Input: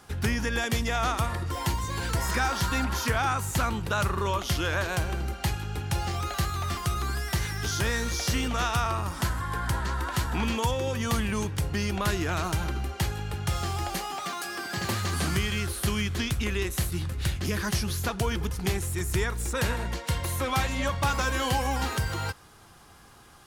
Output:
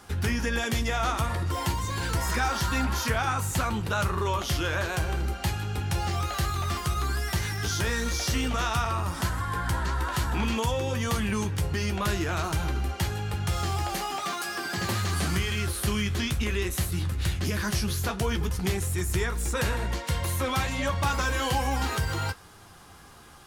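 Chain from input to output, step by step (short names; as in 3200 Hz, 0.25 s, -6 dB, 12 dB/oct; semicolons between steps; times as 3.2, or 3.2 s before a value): in parallel at +1 dB: limiter -25 dBFS, peak gain reduction 9 dB; on the sum: flange 0.53 Hz, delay 9.8 ms, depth 5.3 ms, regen -42%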